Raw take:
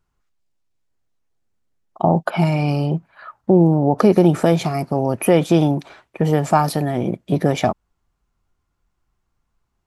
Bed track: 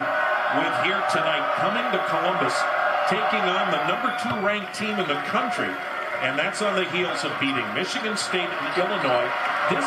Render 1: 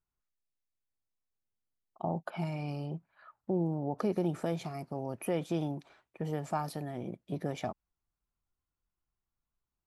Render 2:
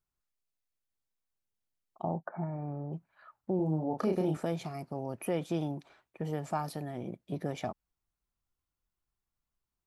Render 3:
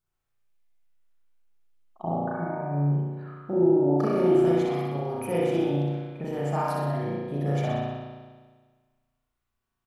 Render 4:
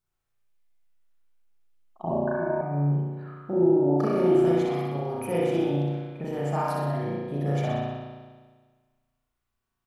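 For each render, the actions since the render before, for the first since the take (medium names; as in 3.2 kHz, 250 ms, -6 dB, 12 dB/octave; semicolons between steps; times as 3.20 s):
trim -18 dB
2.16–2.93 s: elliptic low-pass 1.8 kHz; 3.56–4.37 s: doubling 32 ms -4 dB
on a send: feedback delay 62 ms, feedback 55%, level -4 dB; on the sum: spring tank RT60 1.5 s, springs 35 ms, chirp 60 ms, DRR -6 dB
2.09–2.61 s: rippled EQ curve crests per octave 1.4, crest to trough 17 dB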